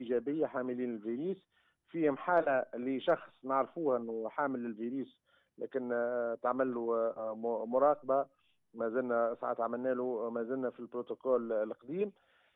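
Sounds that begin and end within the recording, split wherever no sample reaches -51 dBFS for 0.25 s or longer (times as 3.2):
1.94–5.08
5.58–8.25
8.74–12.1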